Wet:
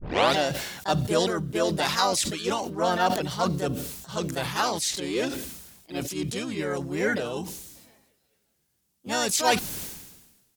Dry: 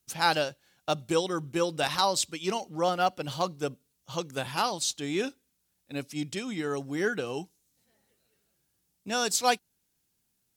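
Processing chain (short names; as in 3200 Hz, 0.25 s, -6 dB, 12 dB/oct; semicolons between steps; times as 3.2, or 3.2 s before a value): tape start at the beginning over 0.36 s; harmoniser -12 st -14 dB, +4 st -3 dB; sustainer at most 50 dB/s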